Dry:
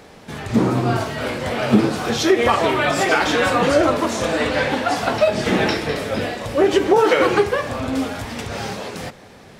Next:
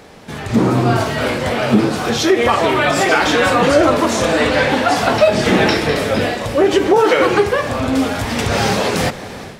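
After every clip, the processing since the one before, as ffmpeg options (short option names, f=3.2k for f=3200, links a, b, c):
-filter_complex "[0:a]dynaudnorm=f=410:g=3:m=13dB,asplit=2[a][b];[b]alimiter=limit=-12dB:level=0:latency=1,volume=-2.5dB[c];[a][c]amix=inputs=2:normalize=0,volume=-2dB"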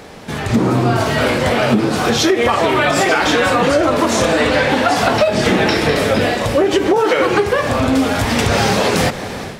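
-af "acompressor=threshold=-15dB:ratio=6,volume=4.5dB"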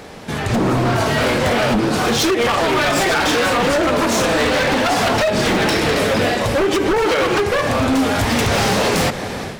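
-af "aeval=exprs='0.282*(abs(mod(val(0)/0.282+3,4)-2)-1)':c=same"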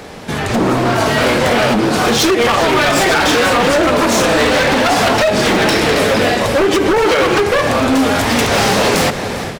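-filter_complex "[0:a]acrossover=split=200[a][b];[a]alimiter=limit=-23.5dB:level=0:latency=1[c];[b]aecho=1:1:400:0.15[d];[c][d]amix=inputs=2:normalize=0,volume=4dB"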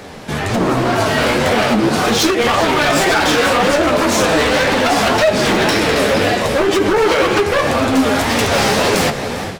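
-af "flanger=delay=9.1:depth=6.3:regen=42:speed=1.9:shape=triangular,volume=2.5dB"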